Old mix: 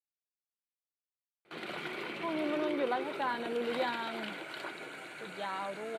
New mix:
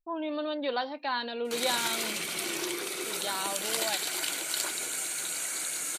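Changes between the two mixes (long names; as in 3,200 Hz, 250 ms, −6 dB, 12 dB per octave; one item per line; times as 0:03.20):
speech: entry −2.15 s
master: remove high-frequency loss of the air 500 metres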